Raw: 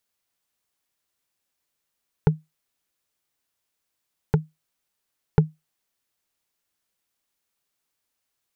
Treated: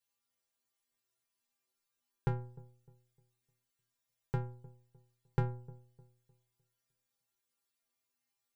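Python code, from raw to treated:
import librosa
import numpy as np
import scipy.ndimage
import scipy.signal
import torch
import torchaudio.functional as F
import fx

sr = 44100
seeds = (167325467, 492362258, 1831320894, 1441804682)

p1 = fx.stiff_resonator(x, sr, f0_hz=120.0, decay_s=0.58, stiffness=0.008)
p2 = p1 + fx.echo_wet_lowpass(p1, sr, ms=304, feedback_pct=31, hz=680.0, wet_db=-19.0, dry=0)
y = F.gain(torch.from_numpy(p2), 6.0).numpy()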